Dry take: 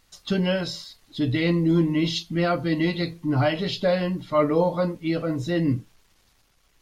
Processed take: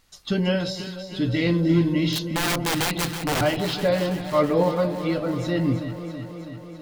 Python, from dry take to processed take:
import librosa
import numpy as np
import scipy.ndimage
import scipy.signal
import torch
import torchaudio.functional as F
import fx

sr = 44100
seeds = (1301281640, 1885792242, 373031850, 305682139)

y = fx.overflow_wrap(x, sr, gain_db=19.0, at=(2.12, 3.41))
y = fx.echo_alternate(y, sr, ms=163, hz=810.0, feedback_pct=83, wet_db=-9)